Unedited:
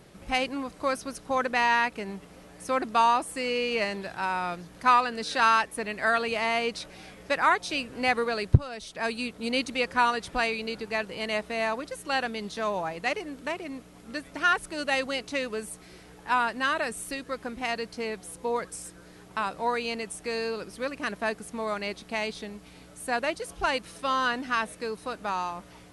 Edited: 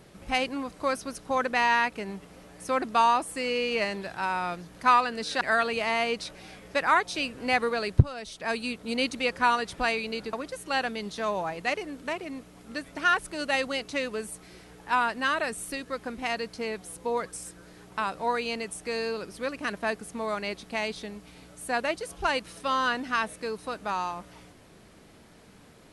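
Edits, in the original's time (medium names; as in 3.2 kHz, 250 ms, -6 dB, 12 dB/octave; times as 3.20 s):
5.41–5.96 s: delete
10.88–11.72 s: delete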